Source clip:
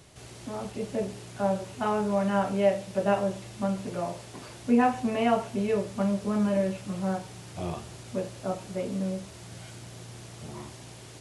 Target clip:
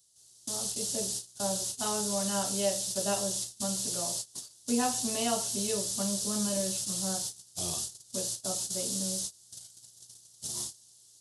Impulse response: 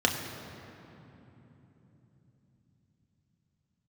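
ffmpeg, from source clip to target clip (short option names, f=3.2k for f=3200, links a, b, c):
-af "agate=range=-24dB:threshold=-40dB:ratio=16:detection=peak,aexciter=amount=12.3:drive=7.8:freq=3.6k,volume=-7.5dB"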